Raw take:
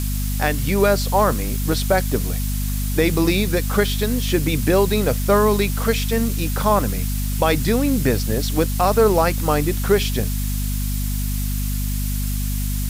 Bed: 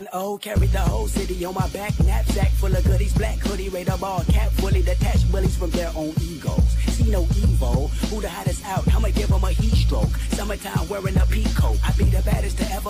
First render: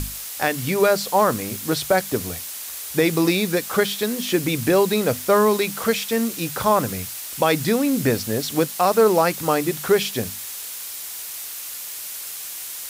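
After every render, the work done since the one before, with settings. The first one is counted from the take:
mains-hum notches 50/100/150/200/250 Hz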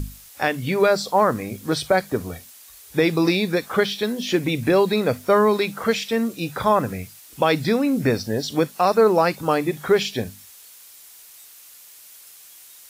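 noise reduction from a noise print 13 dB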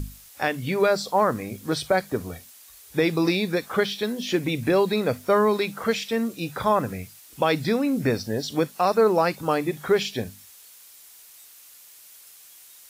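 level −3 dB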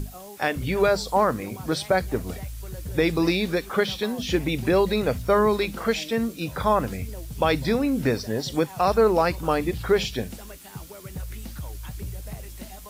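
mix in bed −16.5 dB

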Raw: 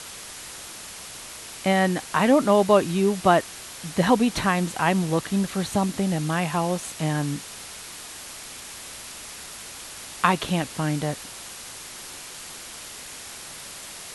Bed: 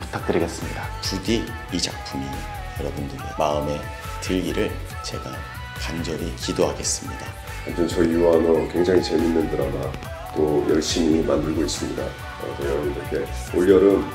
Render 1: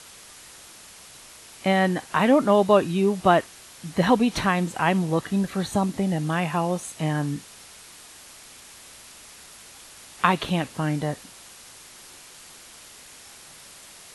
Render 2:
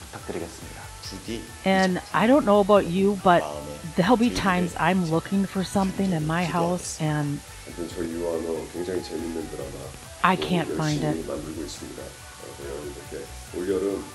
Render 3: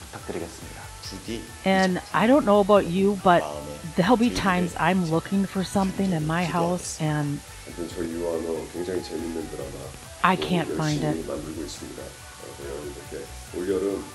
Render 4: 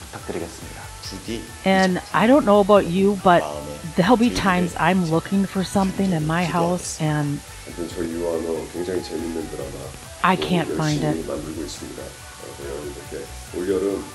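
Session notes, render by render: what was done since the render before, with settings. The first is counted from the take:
noise reduction from a noise print 7 dB
mix in bed −11 dB
no processing that can be heard
level +3.5 dB; brickwall limiter −2 dBFS, peak gain reduction 3 dB

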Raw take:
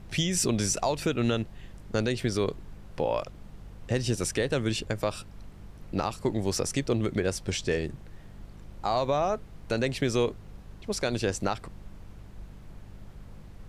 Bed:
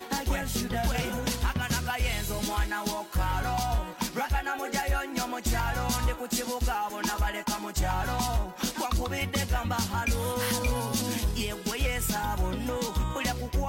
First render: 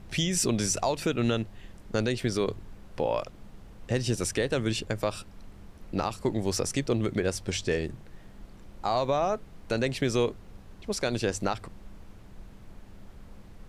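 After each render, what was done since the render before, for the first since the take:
hum removal 50 Hz, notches 3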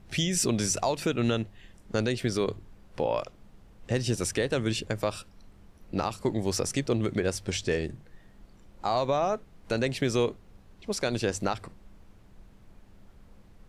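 noise reduction from a noise print 6 dB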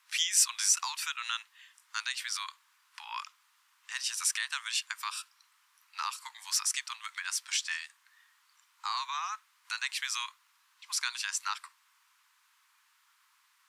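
Butterworth high-pass 970 Hz 72 dB per octave
high-shelf EQ 4,700 Hz +5.5 dB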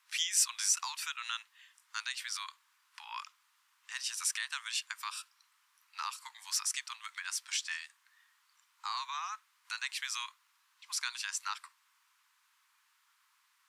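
level −3.5 dB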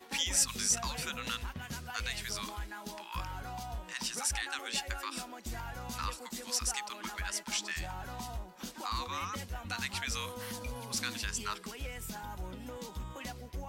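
mix in bed −13 dB

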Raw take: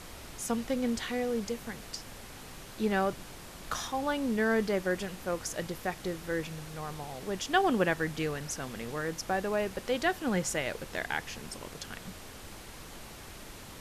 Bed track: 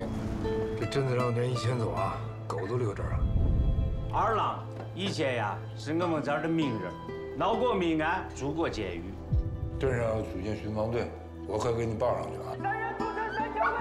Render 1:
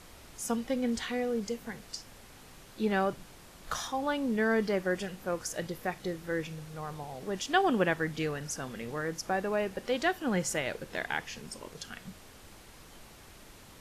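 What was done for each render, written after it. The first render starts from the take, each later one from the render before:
noise reduction from a noise print 6 dB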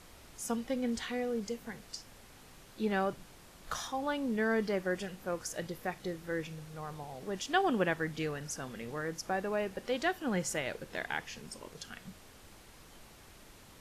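level −3 dB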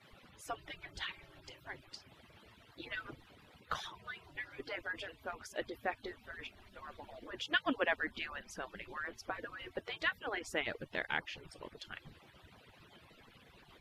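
harmonic-percussive split with one part muted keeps percussive
high shelf with overshoot 4,700 Hz −11 dB, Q 1.5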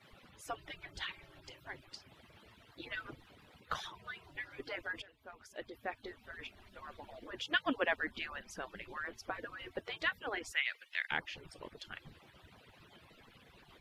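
0:05.02–0:06.50: fade in, from −14.5 dB
0:10.52–0:11.11: high-pass with resonance 2,100 Hz, resonance Q 1.8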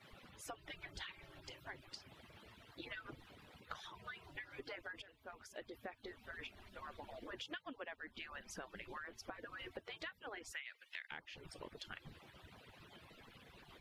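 downward compressor 10 to 1, threshold −45 dBFS, peak gain reduction 19 dB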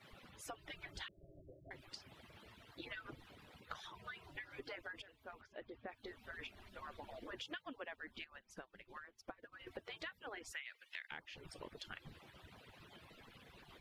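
0:01.08–0:01.71: Butterworth low-pass 670 Hz 96 dB per octave
0:05.41–0:05.89: high-frequency loss of the air 280 metres
0:08.24–0:09.67: expander for the loud parts 2.5 to 1, over −58 dBFS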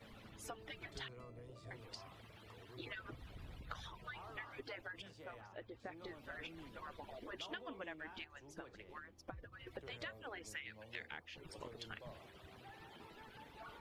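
mix in bed track −27.5 dB

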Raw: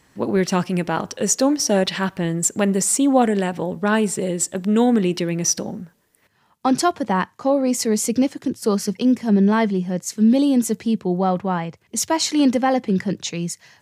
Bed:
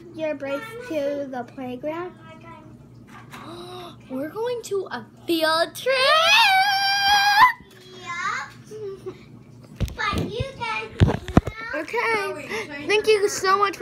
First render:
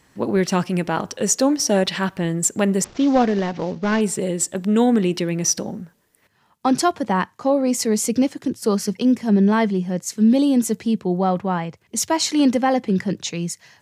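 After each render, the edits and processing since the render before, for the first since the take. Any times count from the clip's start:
0:02.84–0:04.01: variable-slope delta modulation 32 kbit/s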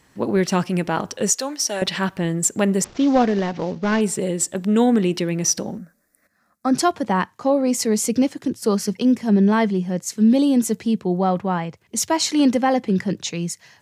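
0:01.30–0:01.82: high-pass filter 1,300 Hz 6 dB per octave
0:05.78–0:06.74: phaser with its sweep stopped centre 610 Hz, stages 8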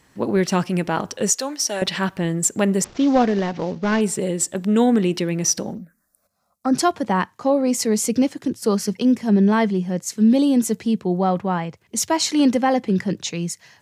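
0:05.73–0:06.73: phaser swept by the level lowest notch 280 Hz, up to 3,100 Hz, full sweep at −27 dBFS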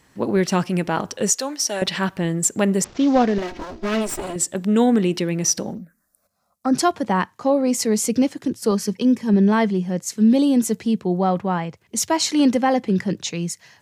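0:03.38–0:04.36: lower of the sound and its delayed copy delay 3.1 ms
0:08.71–0:09.34: notch comb filter 700 Hz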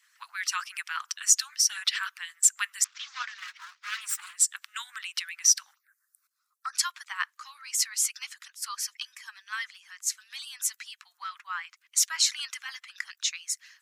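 Butterworth high-pass 1,200 Hz 48 dB per octave
harmonic and percussive parts rebalanced harmonic −18 dB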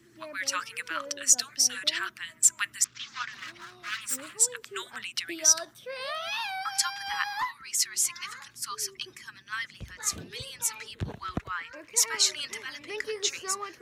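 mix in bed −17.5 dB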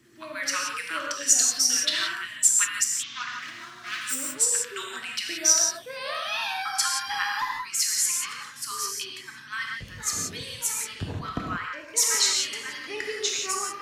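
reverb whose tail is shaped and stops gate 200 ms flat, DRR −1 dB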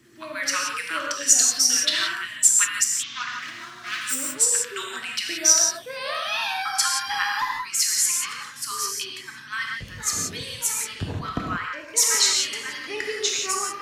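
level +3 dB

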